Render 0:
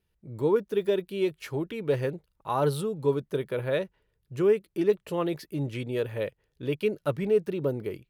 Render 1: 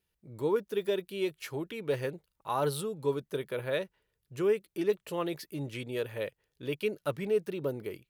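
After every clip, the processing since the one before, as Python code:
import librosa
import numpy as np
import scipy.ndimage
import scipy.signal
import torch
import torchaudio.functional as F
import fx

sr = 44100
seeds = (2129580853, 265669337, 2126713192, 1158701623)

y = fx.tilt_eq(x, sr, slope=1.5)
y = y * librosa.db_to_amplitude(-3.0)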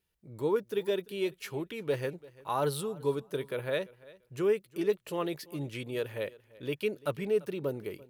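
y = fx.echo_feedback(x, sr, ms=341, feedback_pct=19, wet_db=-21.5)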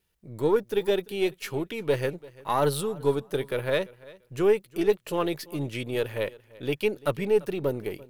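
y = np.where(x < 0.0, 10.0 ** (-3.0 / 20.0) * x, x)
y = y * librosa.db_to_amplitude(7.0)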